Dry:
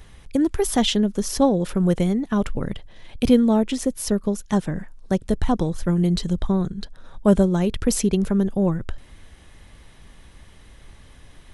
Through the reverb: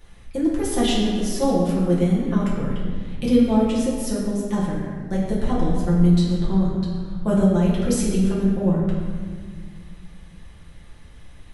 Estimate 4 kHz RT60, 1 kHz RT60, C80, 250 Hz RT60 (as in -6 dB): 1.2 s, 1.7 s, 2.5 dB, 2.9 s